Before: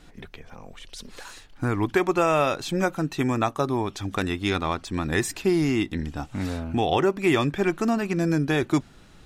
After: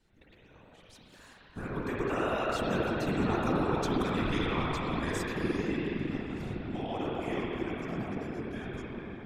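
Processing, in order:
source passing by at 0:03.72, 13 m/s, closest 5.2 metres
downward compressor 6 to 1, threshold −32 dBFS, peak gain reduction 12 dB
spring reverb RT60 4 s, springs 46/57 ms, chirp 65 ms, DRR −6 dB
random phases in short frames

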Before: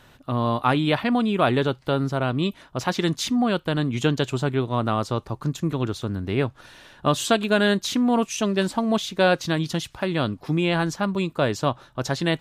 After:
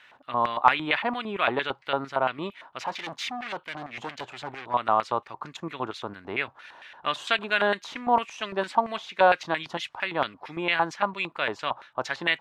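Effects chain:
0:02.79–0:04.74: gain into a clipping stage and back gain 27.5 dB
auto-filter band-pass square 4.4 Hz 900–2,200 Hz
level +7.5 dB

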